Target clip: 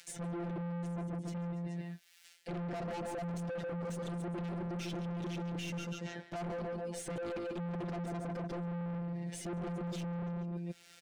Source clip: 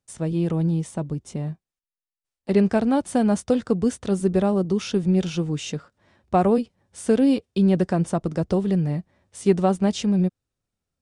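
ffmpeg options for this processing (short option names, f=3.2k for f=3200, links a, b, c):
-filter_complex "[0:a]adynamicequalizer=threshold=0.0126:dfrequency=310:dqfactor=4.8:tfrequency=310:tqfactor=4.8:attack=5:release=100:ratio=0.375:range=2:mode=cutabove:tftype=bell,aecho=1:1:143|286|429:0.316|0.0949|0.0285,afftfilt=real='hypot(re,im)*cos(PI*b)':imag='0':win_size=1024:overlap=0.75,asplit=2[a][b];[b]highpass=f=720:p=1,volume=37dB,asoftclip=type=tanh:threshold=-7dB[c];[a][c]amix=inputs=2:normalize=0,lowpass=f=1.1k:p=1,volume=-6dB,equalizer=f=1.1k:t=o:w=0.59:g=-15,acrossover=split=1300[d][e];[e]acompressor=mode=upward:threshold=-37dB:ratio=2.5[f];[d][f]amix=inputs=2:normalize=0,asoftclip=type=tanh:threshold=-23dB,areverse,acompressor=threshold=-37dB:ratio=20,areverse,volume=-1dB"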